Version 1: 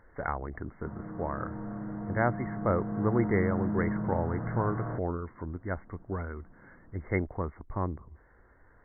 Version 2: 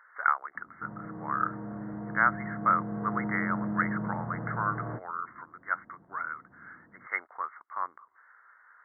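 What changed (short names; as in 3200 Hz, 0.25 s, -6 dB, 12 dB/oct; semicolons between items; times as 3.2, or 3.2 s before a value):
speech: add resonant high-pass 1300 Hz, resonance Q 4.2; master: add HPF 92 Hz 6 dB/oct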